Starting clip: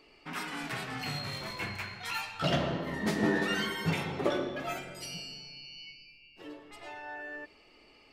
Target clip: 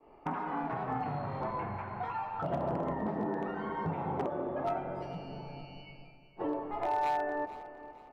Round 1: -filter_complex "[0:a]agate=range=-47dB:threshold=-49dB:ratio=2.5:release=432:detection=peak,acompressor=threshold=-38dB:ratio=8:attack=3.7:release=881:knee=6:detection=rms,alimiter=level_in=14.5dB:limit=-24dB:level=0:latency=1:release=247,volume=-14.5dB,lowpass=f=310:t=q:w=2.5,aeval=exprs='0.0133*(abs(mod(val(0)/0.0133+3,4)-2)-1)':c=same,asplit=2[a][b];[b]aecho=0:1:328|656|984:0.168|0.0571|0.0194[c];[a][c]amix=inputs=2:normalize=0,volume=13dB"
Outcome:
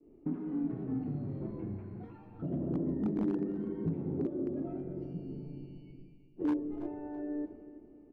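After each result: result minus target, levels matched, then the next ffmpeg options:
1000 Hz band -19.5 dB; echo 0.131 s early
-filter_complex "[0:a]agate=range=-47dB:threshold=-49dB:ratio=2.5:release=432:detection=peak,acompressor=threshold=-38dB:ratio=8:attack=3.7:release=881:knee=6:detection=rms,alimiter=level_in=14.5dB:limit=-24dB:level=0:latency=1:release=247,volume=-14.5dB,lowpass=f=890:t=q:w=2.5,aeval=exprs='0.0133*(abs(mod(val(0)/0.0133+3,4)-2)-1)':c=same,asplit=2[a][b];[b]aecho=0:1:328|656|984:0.168|0.0571|0.0194[c];[a][c]amix=inputs=2:normalize=0,volume=13dB"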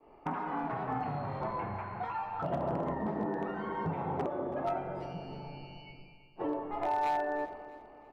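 echo 0.131 s early
-filter_complex "[0:a]agate=range=-47dB:threshold=-49dB:ratio=2.5:release=432:detection=peak,acompressor=threshold=-38dB:ratio=8:attack=3.7:release=881:knee=6:detection=rms,alimiter=level_in=14.5dB:limit=-24dB:level=0:latency=1:release=247,volume=-14.5dB,lowpass=f=890:t=q:w=2.5,aeval=exprs='0.0133*(abs(mod(val(0)/0.0133+3,4)-2)-1)':c=same,asplit=2[a][b];[b]aecho=0:1:459|918|1377:0.168|0.0571|0.0194[c];[a][c]amix=inputs=2:normalize=0,volume=13dB"

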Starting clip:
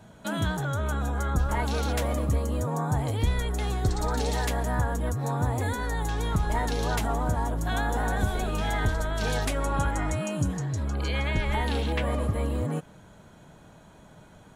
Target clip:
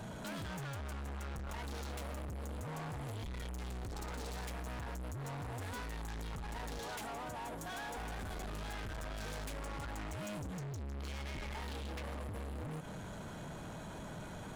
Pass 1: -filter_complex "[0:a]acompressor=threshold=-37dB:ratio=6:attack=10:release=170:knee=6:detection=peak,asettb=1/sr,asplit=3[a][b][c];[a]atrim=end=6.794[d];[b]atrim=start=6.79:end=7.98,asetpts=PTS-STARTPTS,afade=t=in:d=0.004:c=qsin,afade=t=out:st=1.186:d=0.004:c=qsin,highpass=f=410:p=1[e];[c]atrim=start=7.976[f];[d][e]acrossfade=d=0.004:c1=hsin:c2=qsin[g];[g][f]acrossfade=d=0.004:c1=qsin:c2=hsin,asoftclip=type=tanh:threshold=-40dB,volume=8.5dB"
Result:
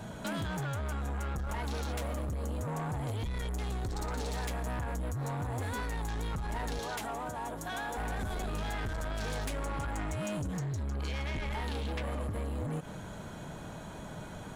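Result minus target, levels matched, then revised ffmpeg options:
soft clip: distortion -6 dB
-filter_complex "[0:a]acompressor=threshold=-37dB:ratio=6:attack=10:release=170:knee=6:detection=peak,asettb=1/sr,asplit=3[a][b][c];[a]atrim=end=6.794[d];[b]atrim=start=6.79:end=7.98,asetpts=PTS-STARTPTS,afade=t=in:d=0.004:c=qsin,afade=t=out:st=1.186:d=0.004:c=qsin,highpass=f=410:p=1[e];[c]atrim=start=7.976[f];[d][e]acrossfade=d=0.004:c1=hsin:c2=qsin[g];[g][f]acrossfade=d=0.004:c1=qsin:c2=hsin,asoftclip=type=tanh:threshold=-49.5dB,volume=8.5dB"

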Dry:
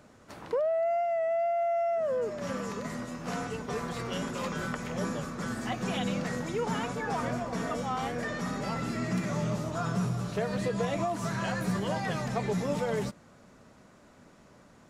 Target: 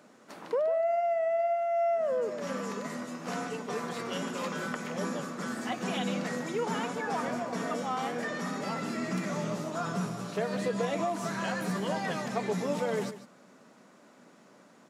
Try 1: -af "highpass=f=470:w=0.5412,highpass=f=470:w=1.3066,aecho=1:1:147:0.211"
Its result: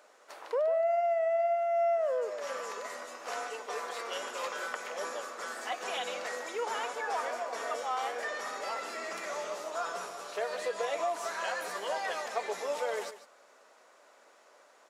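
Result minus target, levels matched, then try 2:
250 Hz band -19.0 dB
-af "highpass=f=180:w=0.5412,highpass=f=180:w=1.3066,aecho=1:1:147:0.211"

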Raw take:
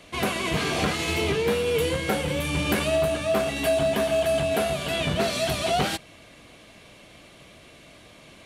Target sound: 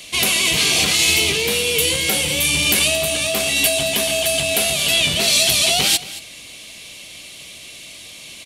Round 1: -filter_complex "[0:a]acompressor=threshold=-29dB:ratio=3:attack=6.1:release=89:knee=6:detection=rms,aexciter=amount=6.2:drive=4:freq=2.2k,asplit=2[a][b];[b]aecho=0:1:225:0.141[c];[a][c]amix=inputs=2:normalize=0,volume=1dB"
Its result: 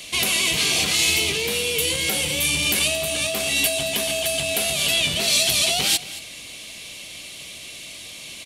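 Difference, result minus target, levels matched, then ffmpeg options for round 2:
compressor: peak gain reduction +5.5 dB
-filter_complex "[0:a]acompressor=threshold=-20.5dB:ratio=3:attack=6.1:release=89:knee=6:detection=rms,aexciter=amount=6.2:drive=4:freq=2.2k,asplit=2[a][b];[b]aecho=0:1:225:0.141[c];[a][c]amix=inputs=2:normalize=0,volume=1dB"

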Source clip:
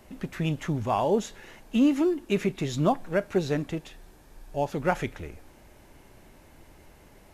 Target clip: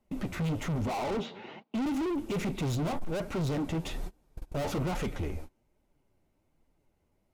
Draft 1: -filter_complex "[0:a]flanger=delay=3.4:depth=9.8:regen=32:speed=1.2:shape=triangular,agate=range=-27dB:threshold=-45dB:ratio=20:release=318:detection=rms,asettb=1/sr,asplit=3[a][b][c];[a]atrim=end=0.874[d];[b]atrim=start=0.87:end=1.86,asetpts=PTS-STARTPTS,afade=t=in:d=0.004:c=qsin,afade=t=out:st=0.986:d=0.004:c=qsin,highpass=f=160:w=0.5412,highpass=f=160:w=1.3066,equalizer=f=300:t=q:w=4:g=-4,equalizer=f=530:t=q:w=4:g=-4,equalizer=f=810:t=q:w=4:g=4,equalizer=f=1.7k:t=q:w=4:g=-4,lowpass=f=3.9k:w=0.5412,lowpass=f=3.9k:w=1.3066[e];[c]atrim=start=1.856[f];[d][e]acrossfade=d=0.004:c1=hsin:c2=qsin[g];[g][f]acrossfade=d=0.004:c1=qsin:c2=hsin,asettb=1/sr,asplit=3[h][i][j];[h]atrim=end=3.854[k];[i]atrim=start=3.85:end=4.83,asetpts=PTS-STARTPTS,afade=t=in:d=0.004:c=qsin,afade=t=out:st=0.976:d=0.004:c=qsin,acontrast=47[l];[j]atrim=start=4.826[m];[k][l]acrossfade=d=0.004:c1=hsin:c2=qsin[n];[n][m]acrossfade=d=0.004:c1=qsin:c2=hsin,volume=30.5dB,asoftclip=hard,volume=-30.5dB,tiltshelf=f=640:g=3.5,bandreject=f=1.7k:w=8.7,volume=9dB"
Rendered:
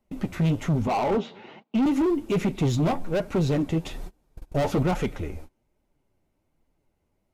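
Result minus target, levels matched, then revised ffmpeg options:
overloaded stage: distortion -4 dB
-filter_complex "[0:a]flanger=delay=3.4:depth=9.8:regen=32:speed=1.2:shape=triangular,agate=range=-27dB:threshold=-45dB:ratio=20:release=318:detection=rms,asettb=1/sr,asplit=3[a][b][c];[a]atrim=end=0.874[d];[b]atrim=start=0.87:end=1.86,asetpts=PTS-STARTPTS,afade=t=in:d=0.004:c=qsin,afade=t=out:st=0.986:d=0.004:c=qsin,highpass=f=160:w=0.5412,highpass=f=160:w=1.3066,equalizer=f=300:t=q:w=4:g=-4,equalizer=f=530:t=q:w=4:g=-4,equalizer=f=810:t=q:w=4:g=4,equalizer=f=1.7k:t=q:w=4:g=-4,lowpass=f=3.9k:w=0.5412,lowpass=f=3.9k:w=1.3066[e];[c]atrim=start=1.856[f];[d][e]acrossfade=d=0.004:c1=hsin:c2=qsin[g];[g][f]acrossfade=d=0.004:c1=qsin:c2=hsin,asettb=1/sr,asplit=3[h][i][j];[h]atrim=end=3.854[k];[i]atrim=start=3.85:end=4.83,asetpts=PTS-STARTPTS,afade=t=in:d=0.004:c=qsin,afade=t=out:st=0.976:d=0.004:c=qsin,acontrast=47[l];[j]atrim=start=4.826[m];[k][l]acrossfade=d=0.004:c1=hsin:c2=qsin[n];[n][m]acrossfade=d=0.004:c1=qsin:c2=hsin,volume=40dB,asoftclip=hard,volume=-40dB,tiltshelf=f=640:g=3.5,bandreject=f=1.7k:w=8.7,volume=9dB"

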